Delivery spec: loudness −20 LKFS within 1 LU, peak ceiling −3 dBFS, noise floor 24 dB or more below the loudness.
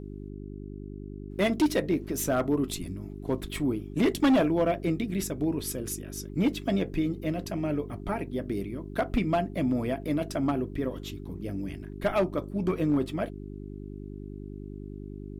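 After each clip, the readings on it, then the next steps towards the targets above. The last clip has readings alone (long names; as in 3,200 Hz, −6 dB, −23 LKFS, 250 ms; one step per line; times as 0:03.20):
share of clipped samples 0.8%; peaks flattened at −18.0 dBFS; mains hum 50 Hz; hum harmonics up to 400 Hz; level of the hum −37 dBFS; integrated loudness −29.0 LKFS; sample peak −18.0 dBFS; target loudness −20.0 LKFS
→ clipped peaks rebuilt −18 dBFS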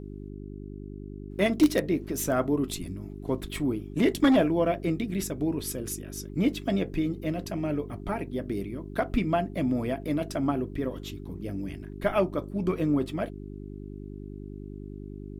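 share of clipped samples 0.0%; mains hum 50 Hz; hum harmonics up to 400 Hz; level of the hum −38 dBFS
→ hum removal 50 Hz, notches 8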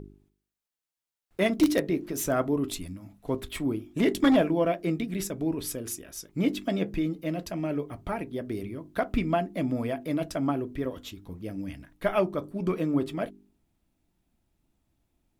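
mains hum none found; integrated loudness −29.0 LKFS; sample peak −10.0 dBFS; target loudness −20.0 LKFS
→ level +9 dB
brickwall limiter −3 dBFS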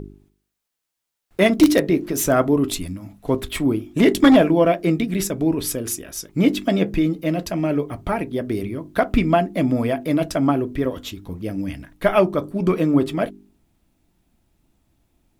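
integrated loudness −20.0 LKFS; sample peak −3.0 dBFS; background noise floor −80 dBFS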